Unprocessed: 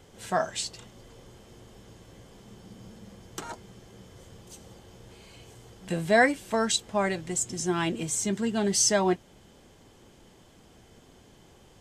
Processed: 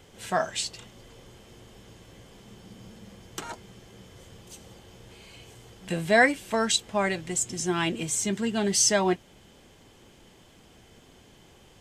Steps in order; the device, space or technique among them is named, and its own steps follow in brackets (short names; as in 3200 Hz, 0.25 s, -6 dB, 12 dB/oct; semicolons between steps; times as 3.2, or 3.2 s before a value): presence and air boost (bell 2600 Hz +4.5 dB 1.2 oct; high shelf 11000 Hz +3.5 dB)